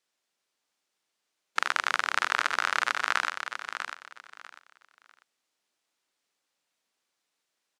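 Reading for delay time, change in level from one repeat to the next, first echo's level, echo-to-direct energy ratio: 0.646 s, -12.5 dB, -8.0 dB, -7.5 dB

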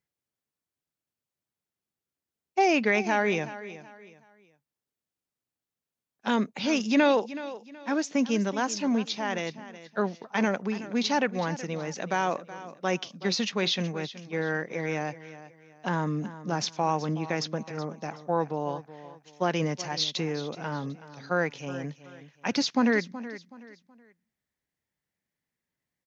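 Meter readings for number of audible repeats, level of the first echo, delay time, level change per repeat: 3, -15.0 dB, 0.374 s, -10.0 dB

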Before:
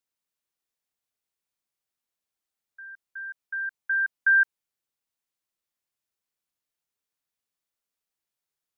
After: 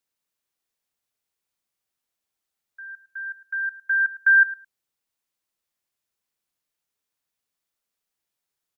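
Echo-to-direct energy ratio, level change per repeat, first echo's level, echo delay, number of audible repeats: -17.0 dB, -16.5 dB, -17.0 dB, 0.107 s, 2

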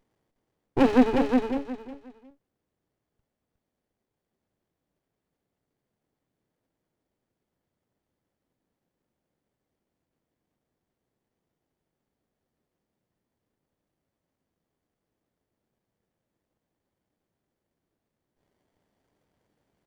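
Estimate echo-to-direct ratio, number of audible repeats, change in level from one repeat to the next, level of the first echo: -4.5 dB, 3, -13.0 dB, -4.5 dB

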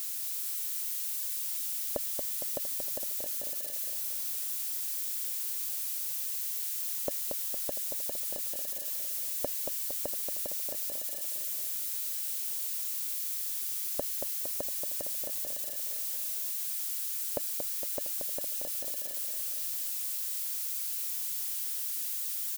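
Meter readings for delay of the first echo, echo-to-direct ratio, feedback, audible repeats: 0.23 s, -4.0 dB, 59%, 7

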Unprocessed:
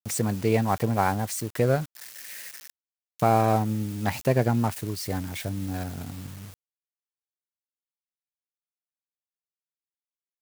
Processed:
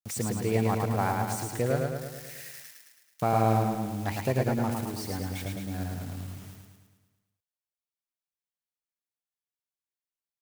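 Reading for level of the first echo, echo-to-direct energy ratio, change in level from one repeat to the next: -3.5 dB, -1.5 dB, -4.5 dB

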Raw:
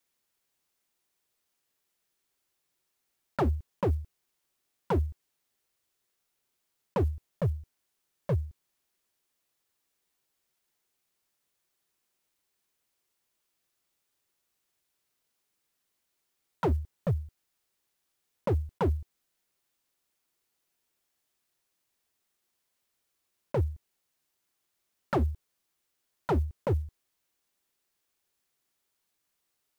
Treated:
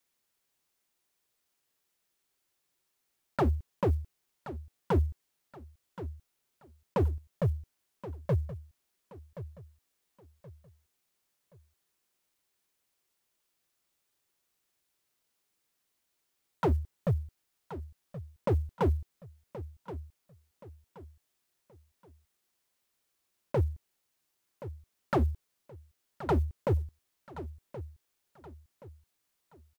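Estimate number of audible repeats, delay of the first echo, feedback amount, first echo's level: 3, 1.075 s, 35%, -14.0 dB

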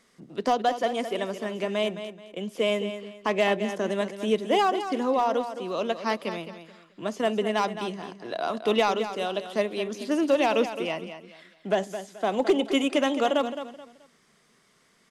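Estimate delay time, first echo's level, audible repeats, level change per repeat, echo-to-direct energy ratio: 0.215 s, -10.5 dB, 3, -11.0 dB, -10.0 dB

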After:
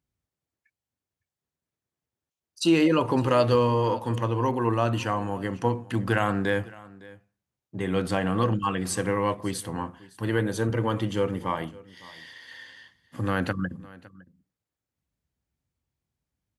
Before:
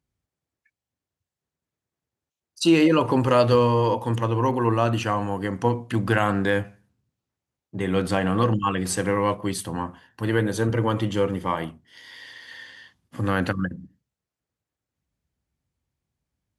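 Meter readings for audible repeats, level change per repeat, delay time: 1, no steady repeat, 0.559 s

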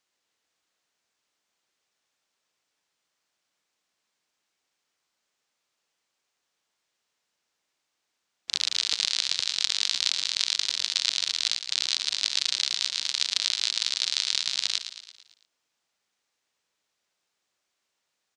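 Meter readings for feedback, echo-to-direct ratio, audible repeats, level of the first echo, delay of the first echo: 54%, -9.0 dB, 5, -10.5 dB, 0.112 s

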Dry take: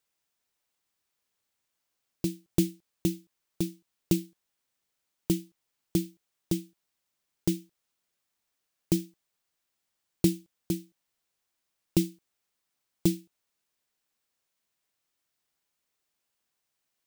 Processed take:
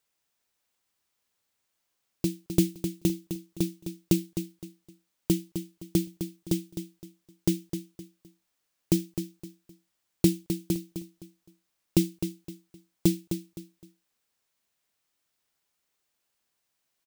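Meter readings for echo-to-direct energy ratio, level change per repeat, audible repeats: -8.5 dB, -11.0 dB, 3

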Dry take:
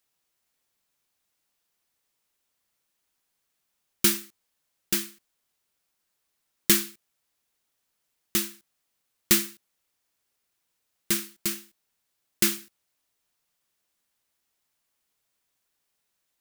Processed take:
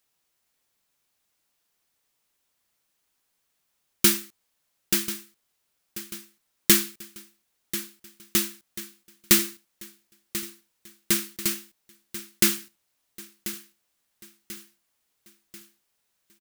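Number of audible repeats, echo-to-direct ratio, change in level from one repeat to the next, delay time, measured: 4, -12.5 dB, -6.5 dB, 1.039 s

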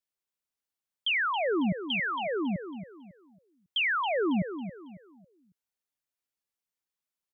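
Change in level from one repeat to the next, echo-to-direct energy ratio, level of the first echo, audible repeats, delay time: -10.0 dB, -9.5 dB, -10.0 dB, 3, 0.275 s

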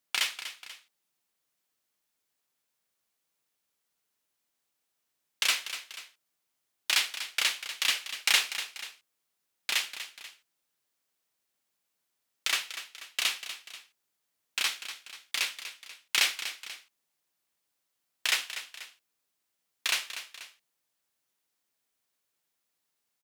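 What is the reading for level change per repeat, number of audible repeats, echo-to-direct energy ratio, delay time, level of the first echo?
-6.0 dB, 2, -10.5 dB, 0.243 s, -11.5 dB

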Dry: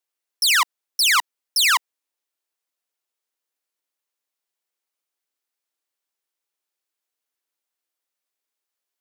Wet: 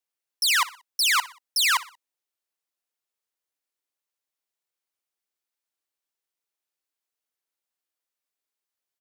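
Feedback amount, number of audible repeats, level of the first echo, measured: 41%, 3, -18.0 dB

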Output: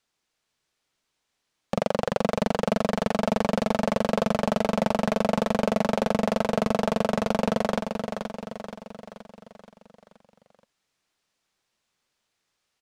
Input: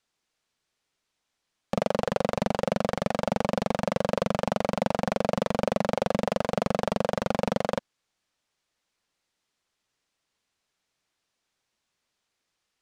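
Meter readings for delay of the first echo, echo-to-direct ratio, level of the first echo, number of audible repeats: 0.476 s, -5.0 dB, -6.5 dB, 6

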